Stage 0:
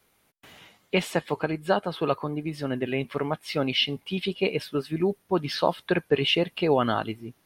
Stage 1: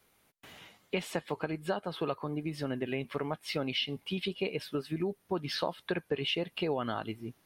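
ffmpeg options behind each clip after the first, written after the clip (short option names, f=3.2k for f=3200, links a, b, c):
-af "acompressor=threshold=-29dB:ratio=3,volume=-2dB"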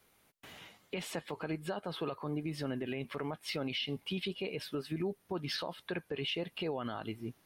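-af "alimiter=level_in=3.5dB:limit=-24dB:level=0:latency=1:release=34,volume=-3.5dB"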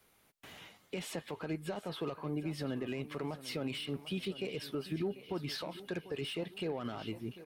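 -filter_complex "[0:a]aecho=1:1:744|1488|2232|2976:0.158|0.0761|0.0365|0.0175,acrossover=split=530|5900[a][b][c];[b]asoftclip=type=tanh:threshold=-39.5dB[d];[a][d][c]amix=inputs=3:normalize=0"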